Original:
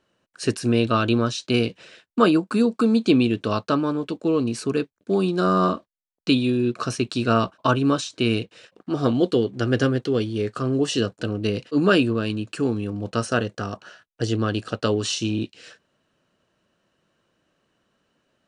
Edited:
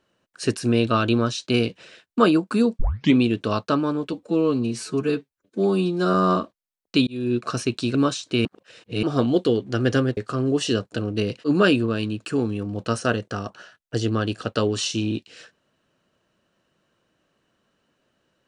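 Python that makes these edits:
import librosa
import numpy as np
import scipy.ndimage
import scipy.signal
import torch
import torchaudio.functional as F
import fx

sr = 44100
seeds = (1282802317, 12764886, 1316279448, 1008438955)

y = fx.edit(x, sr, fx.tape_start(start_s=2.79, length_s=0.37),
    fx.stretch_span(start_s=4.13, length_s=1.34, factor=1.5),
    fx.fade_in_span(start_s=6.4, length_s=0.26),
    fx.cut(start_s=7.28, length_s=0.54),
    fx.reverse_span(start_s=8.32, length_s=0.58),
    fx.cut(start_s=10.04, length_s=0.4), tone=tone)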